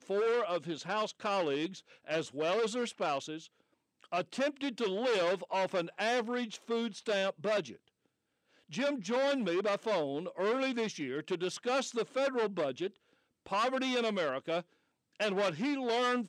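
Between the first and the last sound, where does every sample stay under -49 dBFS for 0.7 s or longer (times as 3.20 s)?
7.75–8.70 s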